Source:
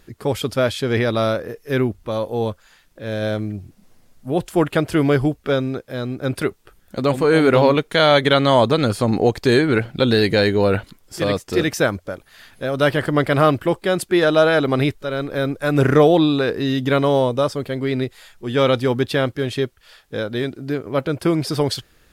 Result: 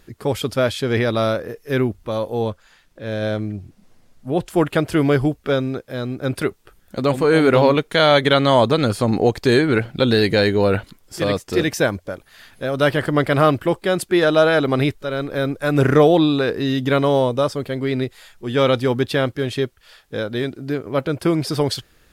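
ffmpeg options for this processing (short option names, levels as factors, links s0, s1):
-filter_complex "[0:a]asettb=1/sr,asplit=3[s0][s1][s2];[s0]atrim=end=2.424[s3];[s1]atrim=start=2.42:end=4.5,asetpts=PTS-STARTPTS,afade=t=in:d=0.004:c=qsin,afade=t=out:st=2.076:d=0.004:c=qsin,highshelf=f=9600:g=-8[s4];[s2]atrim=start=4.496[s5];[s3][s4]acrossfade=d=0.004:c1=hsin:c2=qsin[s6];[s6][s5]acrossfade=d=0.004:c1=qsin:c2=hsin,asettb=1/sr,asplit=3[s7][s8][s9];[s7]atrim=end=11.604[s10];[s8]atrim=start=11.6:end=12.1,asetpts=PTS-STARTPTS,afade=t=in:d=0.004:c=qsin,afade=t=out:st=0.496:d=0.004:c=qsin,bandreject=f=1300:w=8.7[s11];[s9]atrim=start=12.096[s12];[s10][s11]acrossfade=d=0.004:c1=hsin:c2=qsin[s13];[s13][s12]acrossfade=d=0.004:c1=qsin:c2=hsin"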